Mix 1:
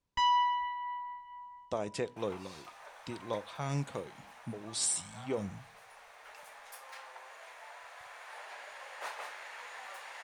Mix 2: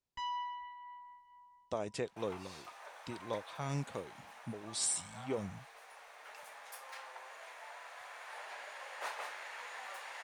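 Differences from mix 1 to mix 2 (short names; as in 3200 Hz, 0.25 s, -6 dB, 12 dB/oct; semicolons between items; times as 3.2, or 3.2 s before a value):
first sound -12.0 dB; reverb: off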